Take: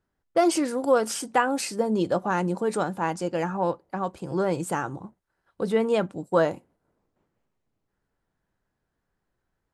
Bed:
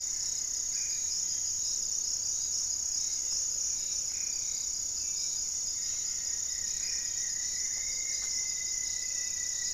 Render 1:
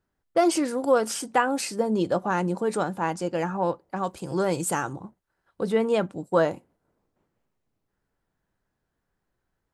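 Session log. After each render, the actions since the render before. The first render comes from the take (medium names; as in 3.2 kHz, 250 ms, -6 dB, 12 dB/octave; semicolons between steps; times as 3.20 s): 3.96–4.93 s: treble shelf 3.5 kHz +9.5 dB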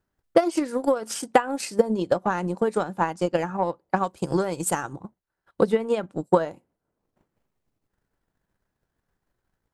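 compression 5:1, threshold -23 dBFS, peak gain reduction 8 dB; transient shaper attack +11 dB, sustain -7 dB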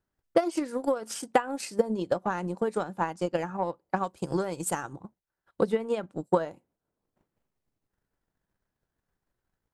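trim -5 dB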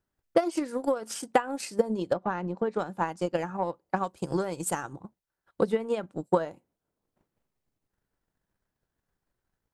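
2.13–2.79 s: distance through air 160 m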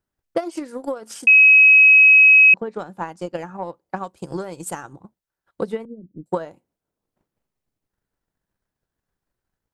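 1.27–2.54 s: bleep 2.55 kHz -7 dBFS; 5.85–6.26 s: inverse Chebyshev band-stop 1–7.6 kHz, stop band 60 dB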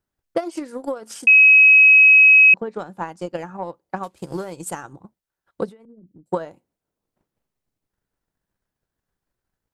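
4.03–4.53 s: CVSD coder 64 kbps; 5.69–6.29 s: compression 12:1, threshold -43 dBFS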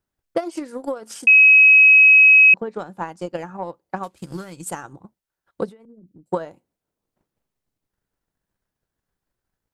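4.17–4.66 s: high-order bell 610 Hz -9 dB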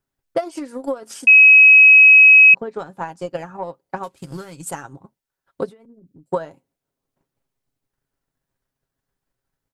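comb 7.4 ms, depth 43%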